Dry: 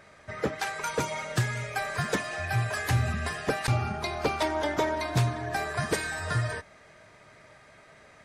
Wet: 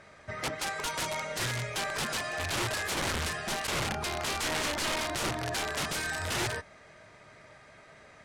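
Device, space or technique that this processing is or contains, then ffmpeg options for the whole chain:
overflowing digital effects unit: -af "aeval=exprs='(mod(18.8*val(0)+1,2)-1)/18.8':c=same,lowpass=10000"

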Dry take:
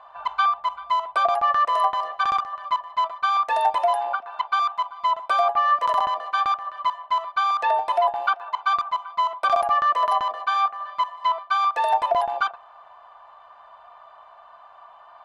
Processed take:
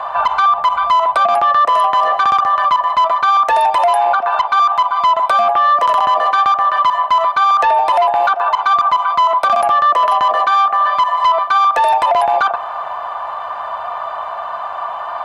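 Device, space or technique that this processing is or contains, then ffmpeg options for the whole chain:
mastering chain: -filter_complex "[0:a]highpass=59,equalizer=f=4000:t=o:w=1.7:g=-3.5,acrossover=split=560|1300[s0][s1][s2];[s0]acompressor=threshold=0.01:ratio=4[s3];[s1]acompressor=threshold=0.0562:ratio=4[s4];[s2]acompressor=threshold=0.0251:ratio=4[s5];[s3][s4][s5]amix=inputs=3:normalize=0,acompressor=threshold=0.0398:ratio=2,asoftclip=type=tanh:threshold=0.0891,alimiter=level_in=33.5:limit=0.891:release=50:level=0:latency=1,volume=0.501"

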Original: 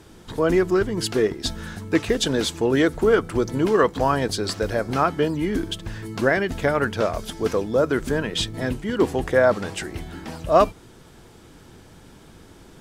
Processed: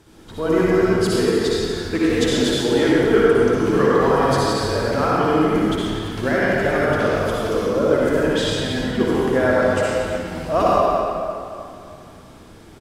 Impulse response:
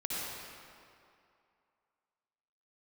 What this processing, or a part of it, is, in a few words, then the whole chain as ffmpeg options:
cave: -filter_complex "[0:a]aecho=1:1:235:0.316[s0];[1:a]atrim=start_sample=2205[s1];[s0][s1]afir=irnorm=-1:irlink=0,volume=0.841"

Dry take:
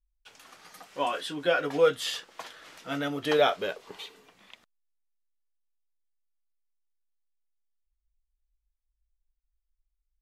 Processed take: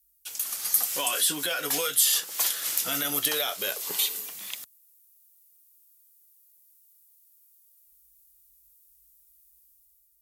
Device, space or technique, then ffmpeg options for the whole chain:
FM broadcast chain: -filter_complex "[0:a]highpass=49,dynaudnorm=f=120:g=9:m=2.11,acrossover=split=710|1500[s0][s1][s2];[s0]acompressor=threshold=0.02:ratio=4[s3];[s1]acompressor=threshold=0.02:ratio=4[s4];[s2]acompressor=threshold=0.02:ratio=4[s5];[s3][s4][s5]amix=inputs=3:normalize=0,aemphasis=mode=production:type=75fm,alimiter=limit=0.0794:level=0:latency=1:release=26,asoftclip=type=hard:threshold=0.0668,lowpass=f=15000:w=0.5412,lowpass=f=15000:w=1.3066,aemphasis=mode=production:type=75fm"

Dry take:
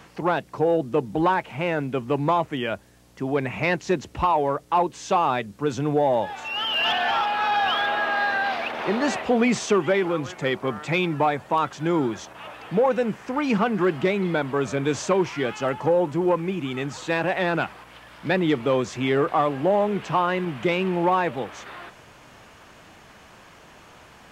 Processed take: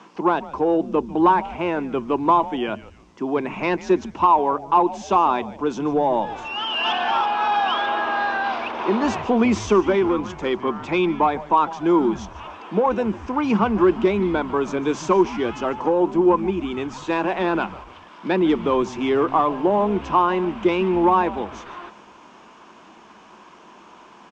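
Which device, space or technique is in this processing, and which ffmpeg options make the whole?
television speaker: -filter_complex "[0:a]highpass=f=190:w=0.5412,highpass=f=190:w=1.3066,equalizer=f=210:t=q:w=4:g=6,equalizer=f=350:t=q:w=4:g=7,equalizer=f=550:t=q:w=4:g=-3,equalizer=f=1000:t=q:w=4:g=9,equalizer=f=1900:t=q:w=4:g=-6,equalizer=f=4300:t=q:w=4:g=-5,lowpass=f=6600:w=0.5412,lowpass=f=6600:w=1.3066,asettb=1/sr,asplit=3[s0][s1][s2];[s0]atrim=end=10.574[s3];[s1]atrim=start=10.57:end=11.79,asetpts=PTS-STARTPTS,afade=t=in:d=0.004:c=qsin,afade=t=out:st=1.216:d=0.004:c=qsin,lowpass=7700[s4];[s2]atrim=start=11.786[s5];[s3][s4]acrossfade=d=0.004:c1=hsin:c2=qsin[s6];[s6][s5]acrossfade=d=0.004:c1=qsin:c2=hsin,asplit=4[s7][s8][s9][s10];[s8]adelay=147,afreqshift=-140,volume=0.141[s11];[s9]adelay=294,afreqshift=-280,volume=0.055[s12];[s10]adelay=441,afreqshift=-420,volume=0.0214[s13];[s7][s11][s12][s13]amix=inputs=4:normalize=0"

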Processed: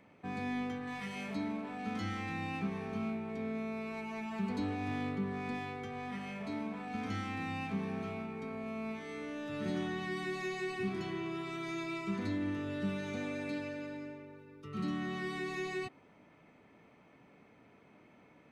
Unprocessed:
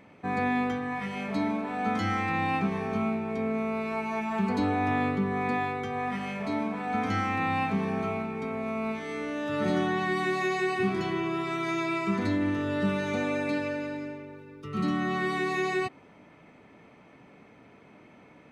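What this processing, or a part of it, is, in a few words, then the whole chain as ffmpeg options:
one-band saturation: -filter_complex "[0:a]acrossover=split=420|2000[s0][s1][s2];[s1]asoftclip=type=tanh:threshold=0.0141[s3];[s0][s3][s2]amix=inputs=3:normalize=0,asettb=1/sr,asplit=3[s4][s5][s6];[s4]atrim=end=0.874[s7];[s5]atrim=start=0.87:end=1.34,asetpts=PTS-STARTPTS,afade=t=in:d=0.004:c=qsin,afade=t=out:st=0.466:d=0.004:c=qsin,highshelf=f=3400:g=9.5[s8];[s6]atrim=start=1.336[s9];[s7][s8]acrossfade=d=0.004:c1=hsin:c2=qsin[s10];[s10][s9]acrossfade=d=0.004:c1=qsin:c2=hsin,volume=0.422"

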